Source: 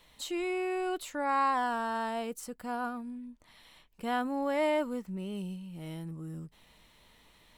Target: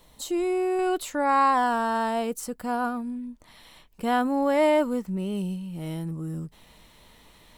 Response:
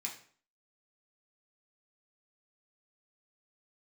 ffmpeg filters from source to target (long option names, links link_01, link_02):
-af "asetnsamples=nb_out_samples=441:pad=0,asendcmd='0.79 equalizer g -3.5',equalizer=frequency=2400:width_type=o:width=1.9:gain=-11,volume=8.5dB"